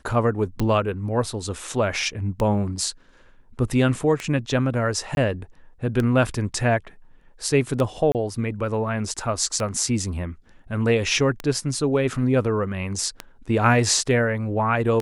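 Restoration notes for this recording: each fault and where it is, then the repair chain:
tick 33 1/3 rpm -12 dBFS
5.15–5.17 s: dropout 21 ms
8.12–8.15 s: dropout 28 ms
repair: de-click; interpolate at 5.15 s, 21 ms; interpolate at 8.12 s, 28 ms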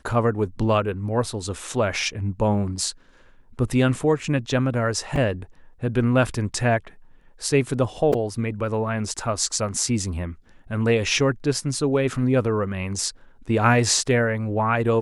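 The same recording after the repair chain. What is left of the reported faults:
nothing left

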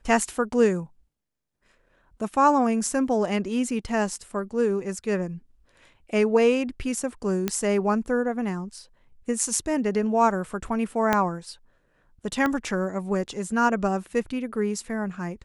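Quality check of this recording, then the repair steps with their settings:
7.48 s: pop -10 dBFS
11.13 s: pop -7 dBFS
12.46 s: pop -13 dBFS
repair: de-click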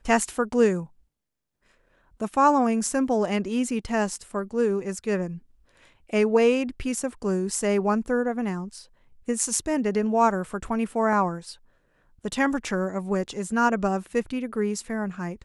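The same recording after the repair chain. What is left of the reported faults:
7.48 s: pop
11.13 s: pop
12.46 s: pop

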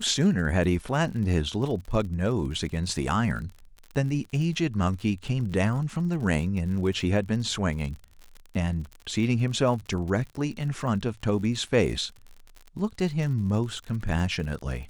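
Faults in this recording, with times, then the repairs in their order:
crackle 54 per s -35 dBFS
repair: de-click

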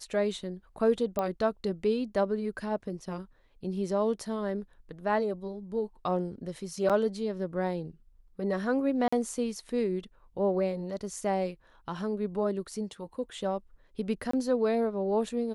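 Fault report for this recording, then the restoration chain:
1.19 s: pop -17 dBFS
6.89–6.90 s: dropout 7.2 ms
9.08–9.12 s: dropout 45 ms
14.31–14.33 s: dropout 24 ms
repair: de-click; interpolate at 6.89 s, 7.2 ms; interpolate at 9.08 s, 45 ms; interpolate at 14.31 s, 24 ms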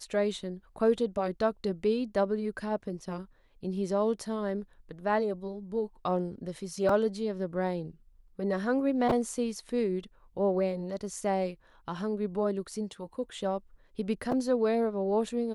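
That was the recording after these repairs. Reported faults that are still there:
nothing left

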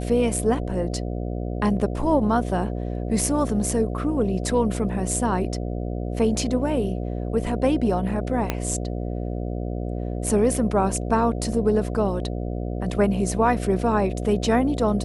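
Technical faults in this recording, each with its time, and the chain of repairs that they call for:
buzz 60 Hz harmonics 12 -28 dBFS
8.50 s: pop -8 dBFS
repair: de-click; de-hum 60 Hz, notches 12

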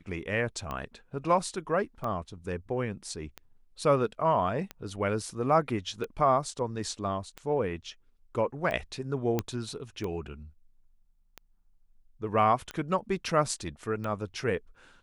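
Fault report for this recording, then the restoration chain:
tick 45 rpm -22 dBFS
9.39 s: pop -14 dBFS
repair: de-click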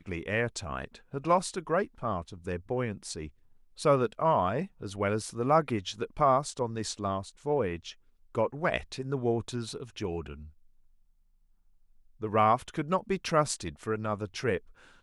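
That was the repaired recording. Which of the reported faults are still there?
nothing left

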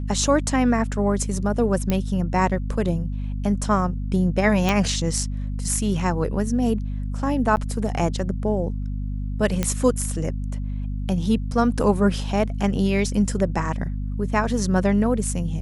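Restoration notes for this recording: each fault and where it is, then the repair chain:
hum 50 Hz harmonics 5 -27 dBFS
1.90 s: pop -9 dBFS
4.69 s: pop -6 dBFS
7.56–7.57 s: dropout 9.5 ms
9.63 s: pop -8 dBFS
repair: de-click; de-hum 50 Hz, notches 5; interpolate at 7.56 s, 9.5 ms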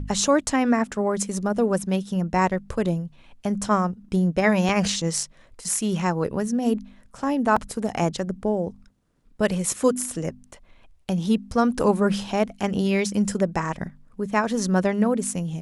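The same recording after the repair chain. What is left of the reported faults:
4.69 s: pop

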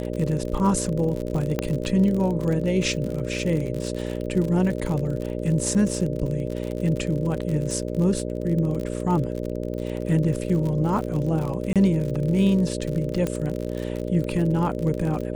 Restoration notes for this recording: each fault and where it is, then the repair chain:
buzz 60 Hz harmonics 10 -29 dBFS
crackle 51 per s -28 dBFS
1.59 s: pop -10 dBFS
11.73–11.76 s: dropout 27 ms
13.27 s: pop -13 dBFS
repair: de-click; de-hum 60 Hz, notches 10; interpolate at 11.73 s, 27 ms

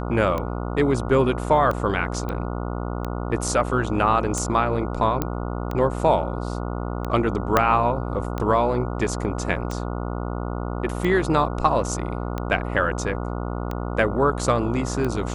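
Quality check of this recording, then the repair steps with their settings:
buzz 60 Hz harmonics 24 -28 dBFS
tick 45 rpm -15 dBFS
2.29 s: pop -17 dBFS
5.22 s: pop -9 dBFS
7.57 s: pop -3 dBFS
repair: de-click; de-hum 60 Hz, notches 24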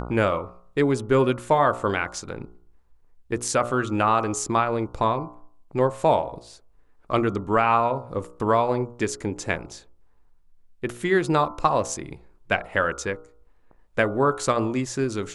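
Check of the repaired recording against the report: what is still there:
7.57 s: pop

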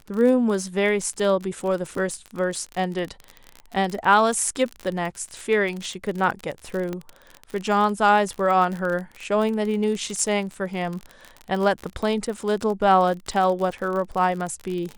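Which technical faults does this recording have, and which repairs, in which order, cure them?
crackle 39 per s -27 dBFS
6.93 s: pop -17 dBFS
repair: de-click

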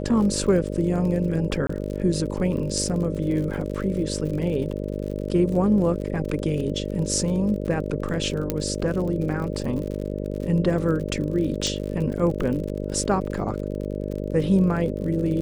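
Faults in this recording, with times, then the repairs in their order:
buzz 50 Hz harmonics 12 -29 dBFS
crackle 47 per s -31 dBFS
1.67–1.69 s: dropout 24 ms
8.50 s: pop -9 dBFS
11.67 s: pop -15 dBFS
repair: de-click; de-hum 50 Hz, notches 12; interpolate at 1.67 s, 24 ms

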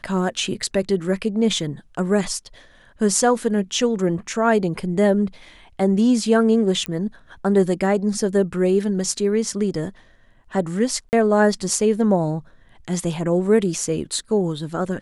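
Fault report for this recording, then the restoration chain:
6.86 s: pop -12 dBFS
11.09–11.13 s: dropout 39 ms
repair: de-click; interpolate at 11.09 s, 39 ms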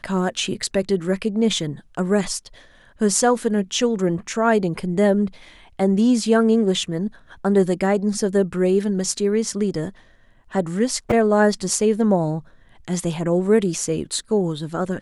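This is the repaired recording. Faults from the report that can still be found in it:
nothing left

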